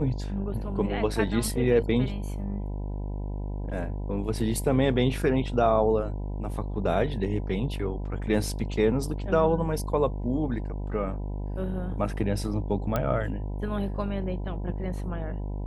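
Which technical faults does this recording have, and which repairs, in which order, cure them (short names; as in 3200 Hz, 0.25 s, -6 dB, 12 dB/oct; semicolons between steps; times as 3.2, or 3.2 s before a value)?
buzz 50 Hz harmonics 20 -32 dBFS
12.96 pop -13 dBFS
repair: de-click; de-hum 50 Hz, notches 20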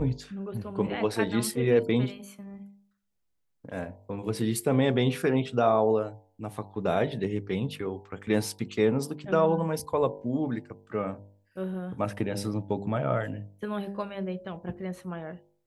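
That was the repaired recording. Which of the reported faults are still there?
none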